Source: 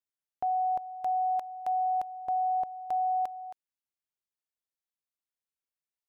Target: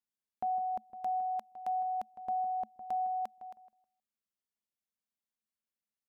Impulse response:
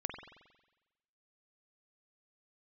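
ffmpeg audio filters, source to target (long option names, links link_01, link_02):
-filter_complex "[0:a]equalizer=frequency=220:width=4.6:gain=15,asplit=2[link_01][link_02];[link_02]adelay=158,lowpass=frequency=920:poles=1,volume=-10dB,asplit=2[link_03][link_04];[link_04]adelay=158,lowpass=frequency=920:poles=1,volume=0.25,asplit=2[link_05][link_06];[link_06]adelay=158,lowpass=frequency=920:poles=1,volume=0.25[link_07];[link_01][link_03][link_05][link_07]amix=inputs=4:normalize=0,volume=-4dB"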